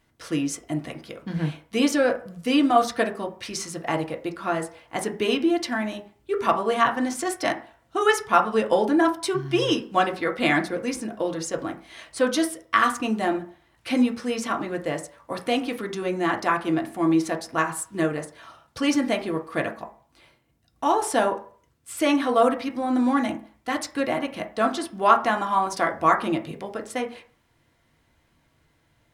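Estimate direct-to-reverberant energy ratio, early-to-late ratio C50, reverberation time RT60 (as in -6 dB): 1.5 dB, 13.0 dB, 0.45 s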